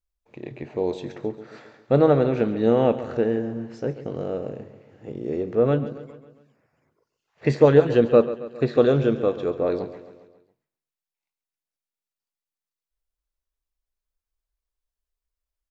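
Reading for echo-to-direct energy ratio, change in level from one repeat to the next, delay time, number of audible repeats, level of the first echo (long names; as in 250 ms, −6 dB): −12.5 dB, −5.5 dB, 136 ms, 4, −14.0 dB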